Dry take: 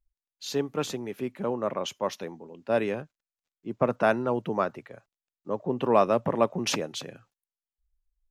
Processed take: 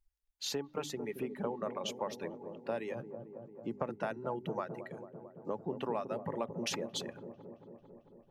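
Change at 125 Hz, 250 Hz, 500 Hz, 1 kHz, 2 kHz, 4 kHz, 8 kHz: -9.0, -9.5, -11.0, -11.5, -11.0, -5.5, -6.0 dB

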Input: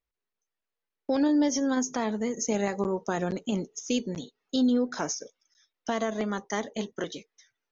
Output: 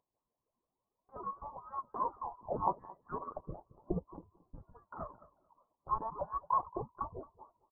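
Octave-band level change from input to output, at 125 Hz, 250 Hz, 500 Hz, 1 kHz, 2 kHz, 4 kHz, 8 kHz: -9.0 dB, -22.0 dB, -13.5 dB, 0.0 dB, -27.5 dB, under -40 dB, n/a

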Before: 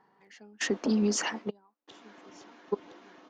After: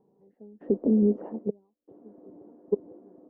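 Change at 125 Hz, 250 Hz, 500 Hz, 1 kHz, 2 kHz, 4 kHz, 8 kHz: +4.5 dB, +4.5 dB, +5.0 dB, -11.0 dB, under -30 dB, under -40 dB, under -40 dB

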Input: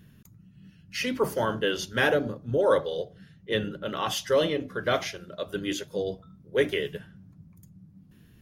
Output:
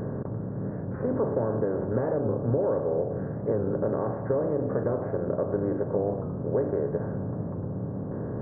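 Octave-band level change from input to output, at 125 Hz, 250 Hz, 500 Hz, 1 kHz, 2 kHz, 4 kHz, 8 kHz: +8.5 dB, +4.0 dB, +1.0 dB, -4.0 dB, -16.5 dB, under -40 dB, under -40 dB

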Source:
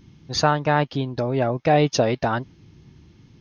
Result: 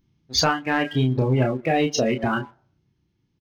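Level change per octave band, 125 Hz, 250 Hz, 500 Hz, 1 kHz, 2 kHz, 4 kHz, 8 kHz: +1.0 dB, +1.5 dB, -2.5 dB, -3.5 dB, +1.5 dB, +3.0 dB, n/a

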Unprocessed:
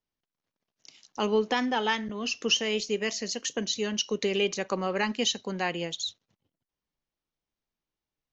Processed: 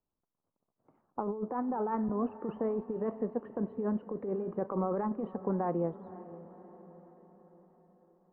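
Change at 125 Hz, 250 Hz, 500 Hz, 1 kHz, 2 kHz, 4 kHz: +0.5 dB, -1.0 dB, -4.0 dB, -4.0 dB, -23.5 dB, under -40 dB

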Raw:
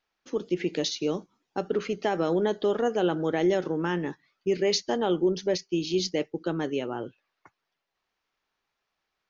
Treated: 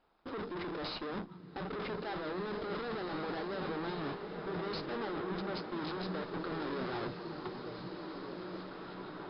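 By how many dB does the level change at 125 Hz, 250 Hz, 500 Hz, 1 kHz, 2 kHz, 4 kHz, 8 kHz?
-7.5 dB, -10.5 dB, -12.5 dB, -6.0 dB, -5.5 dB, -11.0 dB, n/a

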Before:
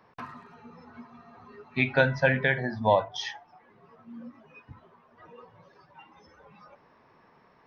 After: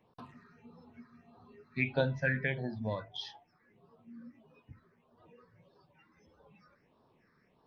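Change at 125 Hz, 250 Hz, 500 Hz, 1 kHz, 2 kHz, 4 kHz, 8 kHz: -5.0 dB, -6.0 dB, -10.0 dB, -16.5 dB, -9.0 dB, -7.5 dB, n/a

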